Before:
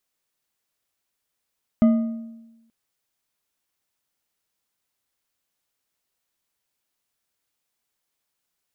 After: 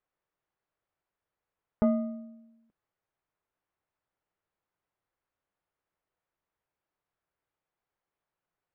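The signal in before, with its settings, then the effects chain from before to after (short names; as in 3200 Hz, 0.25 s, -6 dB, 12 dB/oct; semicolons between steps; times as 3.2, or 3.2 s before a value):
metal hit bar, length 0.88 s, lowest mode 228 Hz, decay 1.07 s, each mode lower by 11.5 dB, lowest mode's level -10.5 dB
LPF 1500 Hz 12 dB/oct; bell 240 Hz -10 dB 0.27 oct; core saturation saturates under 160 Hz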